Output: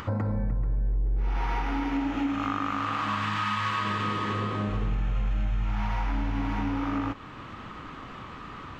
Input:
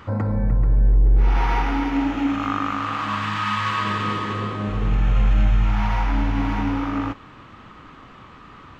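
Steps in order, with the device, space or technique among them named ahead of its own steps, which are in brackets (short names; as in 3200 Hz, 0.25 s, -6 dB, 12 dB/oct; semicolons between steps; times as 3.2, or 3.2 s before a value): upward and downward compression (upward compressor, threshold -37 dBFS; compressor 4:1, threshold -27 dBFS, peak gain reduction 13 dB); gain +1 dB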